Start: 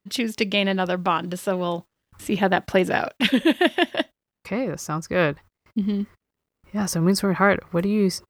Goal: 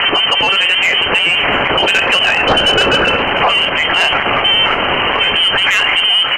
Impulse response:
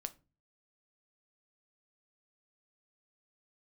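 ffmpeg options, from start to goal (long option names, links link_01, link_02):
-filter_complex "[0:a]aeval=exprs='val(0)+0.5*0.106*sgn(val(0))':channel_layout=same,highpass=310,equalizer=frequency=650:width_type=o:width=0.21:gain=-4[link_01];[1:a]atrim=start_sample=2205,afade=type=out:start_time=0.15:duration=0.01,atrim=end_sample=7056[link_02];[link_01][link_02]afir=irnorm=-1:irlink=0,lowpass=frequency=2800:width_type=q:width=0.5098,lowpass=frequency=2800:width_type=q:width=0.6013,lowpass=frequency=2800:width_type=q:width=0.9,lowpass=frequency=2800:width_type=q:width=2.563,afreqshift=-3300,atempo=1.3,acrossover=split=910[link_03][link_04];[link_03]dynaudnorm=framelen=220:gausssize=11:maxgain=11dB[link_05];[link_05][link_04]amix=inputs=2:normalize=0,asoftclip=type=tanh:threshold=-14.5dB,acompressor=threshold=-35dB:ratio=4,asplit=2[link_06][link_07];[link_07]adelay=699.7,volume=-14dB,highshelf=frequency=4000:gain=-15.7[link_08];[link_06][link_08]amix=inputs=2:normalize=0,alimiter=level_in=33dB:limit=-1dB:release=50:level=0:latency=1,volume=-4dB"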